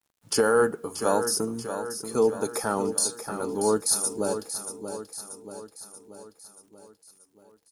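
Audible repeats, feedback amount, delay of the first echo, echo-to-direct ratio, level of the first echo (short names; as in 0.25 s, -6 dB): 5, 55%, 0.633 s, -8.0 dB, -9.5 dB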